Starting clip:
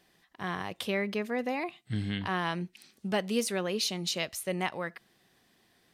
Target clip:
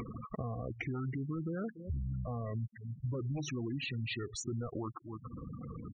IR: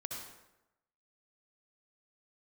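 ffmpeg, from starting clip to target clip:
-filter_complex "[0:a]aeval=exprs='0.168*sin(PI/2*3.16*val(0)/0.168)':c=same,tiltshelf=f=720:g=4,asplit=2[a][b];[b]adelay=285.7,volume=-22dB,highshelf=f=4k:g=-6.43[c];[a][c]amix=inputs=2:normalize=0,acompressor=mode=upward:threshold=-26dB:ratio=2.5,alimiter=limit=-22dB:level=0:latency=1:release=329,asplit=2[d][e];[e]lowshelf=f=410:g=-5.5[f];[1:a]atrim=start_sample=2205[g];[f][g]afir=irnorm=-1:irlink=0,volume=-13.5dB[h];[d][h]amix=inputs=2:normalize=0,acompressor=threshold=-32dB:ratio=4,asetrate=28595,aresample=44100,atempo=1.54221,afftfilt=real='re*gte(hypot(re,im),0.0282)':imag='im*gte(hypot(re,im),0.0282)':win_size=1024:overlap=0.75,volume=-3dB"

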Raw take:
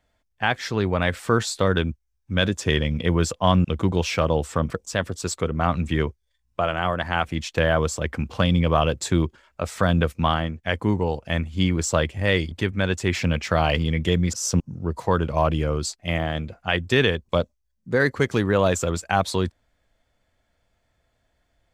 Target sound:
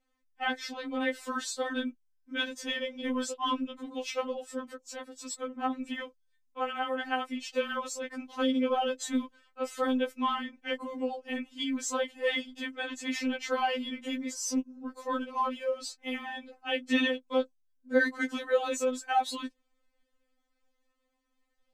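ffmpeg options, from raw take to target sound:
-filter_complex "[0:a]asettb=1/sr,asplit=3[a][b][c];[a]atrim=end=3.534[d];[b]atrim=start=3.53:end=5.82,asetpts=PTS-STARTPTS,afade=t=in:d=0.004:c=qsin,afade=t=out:st=2.286:d=0.004:c=qsin,acrossover=split=460[e][f];[e]aeval=exprs='val(0)*(1-0.7/2+0.7/2*cos(2*PI*9.7*n/s))':c=same[g];[f]aeval=exprs='val(0)*(1-0.7/2-0.7/2*cos(2*PI*9.7*n/s))':c=same[h];[g][h]amix=inputs=2:normalize=0[i];[c]atrim=start=5.816[j];[d][i]acrossfade=d=0.004:c1=hsin:c2=qsin[k];[k][j]acrossfade=d=0.004:c1=qsin:c2=hsin,afftfilt=real='re*3.46*eq(mod(b,12),0)':imag='im*3.46*eq(mod(b,12),0)':win_size=2048:overlap=0.75,volume=-5.5dB"

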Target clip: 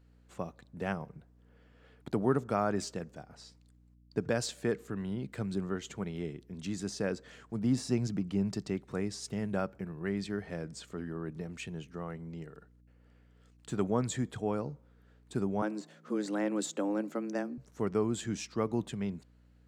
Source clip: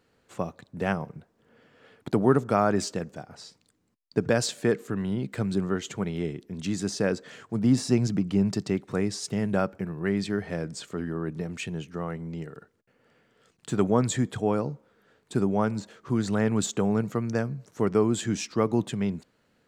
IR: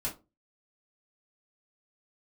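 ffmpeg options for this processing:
-filter_complex "[0:a]aeval=exprs='val(0)+0.00224*(sin(2*PI*60*n/s)+sin(2*PI*2*60*n/s)/2+sin(2*PI*3*60*n/s)/3+sin(2*PI*4*60*n/s)/4+sin(2*PI*5*60*n/s)/5)':c=same,asettb=1/sr,asplit=3[a][b][c];[a]atrim=end=15.624[d];[b]atrim=start=15.62:end=17.58,asetpts=PTS-STARTPTS,afade=t=in:d=0.004:c=qsin,afade=t=out:st=1.956:d=0.004:c=qsin,afreqshift=100[e];[c]atrim=start=17.576[f];[d][e]acrossfade=d=0.004:c1=hsin:c2=qsin[g];[g][f]acrossfade=d=0.004:c1=qsin:c2=hsin,volume=-7.5dB"

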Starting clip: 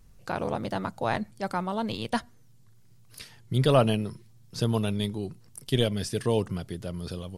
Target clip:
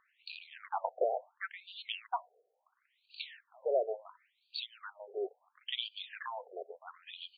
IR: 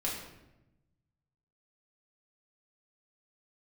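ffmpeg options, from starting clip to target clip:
-af "acompressor=threshold=-29dB:ratio=8,afftfilt=real='re*between(b*sr/1024,530*pow(3400/530,0.5+0.5*sin(2*PI*0.72*pts/sr))/1.41,530*pow(3400/530,0.5+0.5*sin(2*PI*0.72*pts/sr))*1.41)':imag='im*between(b*sr/1024,530*pow(3400/530,0.5+0.5*sin(2*PI*0.72*pts/sr))/1.41,530*pow(3400/530,0.5+0.5*sin(2*PI*0.72*pts/sr))*1.41)':win_size=1024:overlap=0.75,volume=5.5dB"

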